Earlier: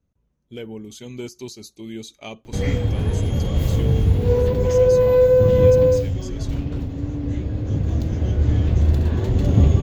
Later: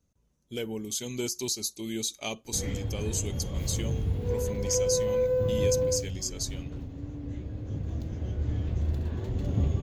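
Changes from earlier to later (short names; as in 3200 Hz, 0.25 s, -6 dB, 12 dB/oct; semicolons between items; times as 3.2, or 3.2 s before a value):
speech: add tone controls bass -2 dB, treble +13 dB; background -12.0 dB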